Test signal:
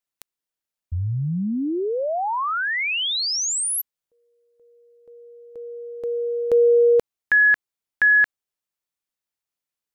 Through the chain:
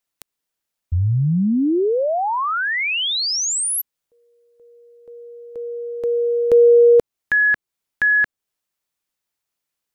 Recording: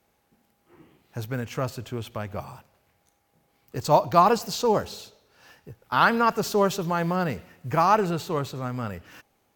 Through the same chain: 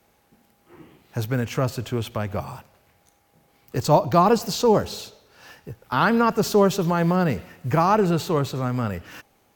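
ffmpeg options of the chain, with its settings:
ffmpeg -i in.wav -filter_complex "[0:a]acrossover=split=480[link_01][link_02];[link_02]acompressor=threshold=-33dB:ratio=1.5:attack=0.24:release=373:knee=2.83:detection=peak[link_03];[link_01][link_03]amix=inputs=2:normalize=0,volume=6.5dB" out.wav

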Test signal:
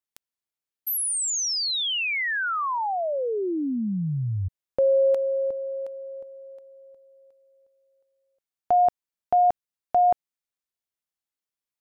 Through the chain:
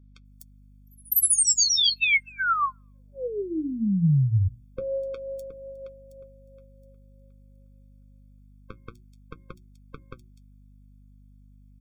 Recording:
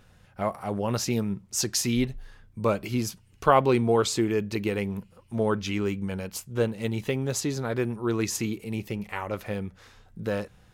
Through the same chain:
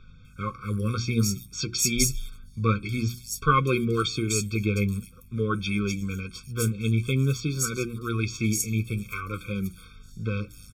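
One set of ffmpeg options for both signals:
ffmpeg -i in.wav -filter_complex "[0:a]equalizer=frequency=470:width_type=o:width=2.7:gain=-13,bandreject=frequency=60:width_type=h:width=6,bandreject=frequency=120:width_type=h:width=6,bandreject=frequency=180:width_type=h:width=6,bandreject=frequency=240:width_type=h:width=6,bandreject=frequency=300:width_type=h:width=6,bandreject=frequency=360:width_type=h:width=6,acontrast=38,flanger=delay=5.1:depth=4.8:regen=49:speed=0.52:shape=triangular,acrossover=split=4800[link_01][link_02];[link_02]adelay=250[link_03];[link_01][link_03]amix=inputs=2:normalize=0,aeval=exprs='val(0)+0.00112*(sin(2*PI*50*n/s)+sin(2*PI*2*50*n/s)/2+sin(2*PI*3*50*n/s)/3+sin(2*PI*4*50*n/s)/4+sin(2*PI*5*50*n/s)/5)':channel_layout=same,afftfilt=real='re*eq(mod(floor(b*sr/1024/530),2),0)':imag='im*eq(mod(floor(b*sr/1024/530),2),0)':win_size=1024:overlap=0.75,volume=7.5dB" out.wav

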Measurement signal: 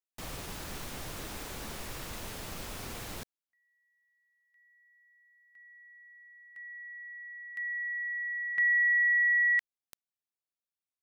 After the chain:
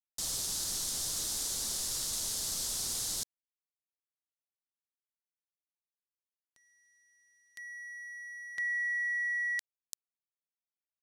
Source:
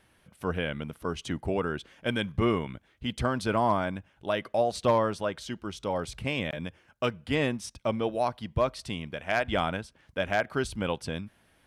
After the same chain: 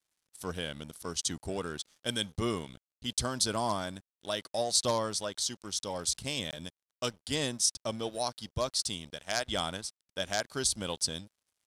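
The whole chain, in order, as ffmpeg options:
ffmpeg -i in.wav -af "aexciter=amount=12.5:drive=3.2:freq=3700,aeval=exprs='sgn(val(0))*max(abs(val(0))-0.00562,0)':channel_layout=same,lowpass=9300,volume=-6dB" out.wav

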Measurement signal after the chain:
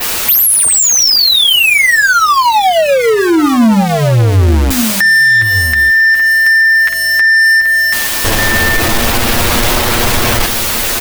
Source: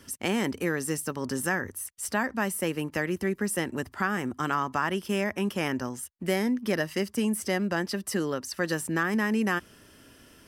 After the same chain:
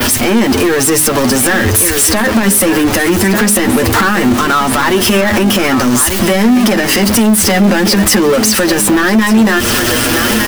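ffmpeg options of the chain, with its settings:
ffmpeg -i in.wav -filter_complex "[0:a]aeval=exprs='val(0)+0.5*0.0316*sgn(val(0))':channel_layout=same,acompressor=threshold=-22dB:ratio=6,equalizer=frequency=140:width_type=o:width=0.45:gain=-9,asplit=2[link_01][link_02];[link_02]aecho=0:1:1192:0.237[link_03];[link_01][link_03]amix=inputs=2:normalize=0,flanger=delay=8.3:depth=1.2:regen=13:speed=0.2:shape=triangular,aeval=exprs='val(0)+0.000562*(sin(2*PI*50*n/s)+sin(2*PI*2*50*n/s)/2+sin(2*PI*3*50*n/s)/3+sin(2*PI*4*50*n/s)/4+sin(2*PI*5*50*n/s)/5)':channel_layout=same,asoftclip=type=tanh:threshold=-29dB,bandreject=frequency=51.8:width_type=h:width=4,bandreject=frequency=103.6:width_type=h:width=4,bandreject=frequency=155.4:width_type=h:width=4,bandreject=frequency=207.2:width_type=h:width=4,bandreject=frequency=259:width_type=h:width=4,bandreject=frequency=310.8:width_type=h:width=4,bandreject=frequency=362.6:width_type=h:width=4,bandreject=frequency=414.4:width_type=h:width=4,adynamicequalizer=threshold=0.00447:dfrequency=7800:dqfactor=1:tfrequency=7800:tqfactor=1:attack=5:release=100:ratio=0.375:range=2:mode=cutabove:tftype=bell,acrossover=split=210[link_04][link_05];[link_05]acompressor=threshold=-35dB:ratio=6[link_06];[link_04][link_06]amix=inputs=2:normalize=0,alimiter=level_in=29.5dB:limit=-1dB:release=50:level=0:latency=1,volume=-1dB" out.wav

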